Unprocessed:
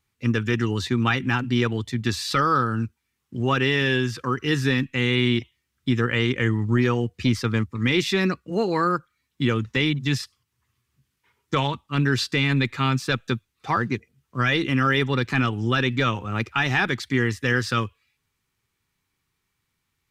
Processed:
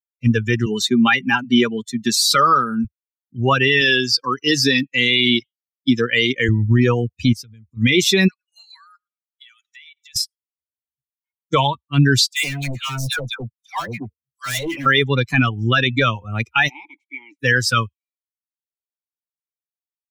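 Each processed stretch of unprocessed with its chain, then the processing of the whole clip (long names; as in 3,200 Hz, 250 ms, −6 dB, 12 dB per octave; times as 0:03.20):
0:00.66–0:02.85: high-pass filter 130 Hz 24 dB per octave + comb filter 5 ms, depth 32%
0:03.81–0:06.49: high-pass filter 150 Hz + parametric band 4,700 Hz +12.5 dB 0.38 octaves
0:07.33–0:07.77: parametric band 800 Hz −10 dB 2.1 octaves + downward compressor, threshold −34 dBFS
0:08.28–0:10.16: high-pass filter 1,400 Hz 24 dB per octave + downward compressor 3 to 1, threshold −41 dBFS + repeating echo 112 ms, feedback 34%, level −19 dB
0:12.27–0:14.86: all-pass dispersion lows, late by 108 ms, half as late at 1,100 Hz + hard clipping −25 dBFS
0:16.68–0:17.39: ceiling on every frequency bin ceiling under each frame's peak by 21 dB + formant filter u
whole clip: spectral dynamics exaggerated over time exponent 2; high-shelf EQ 3,300 Hz +8.5 dB; boost into a limiter +16 dB; level −4.5 dB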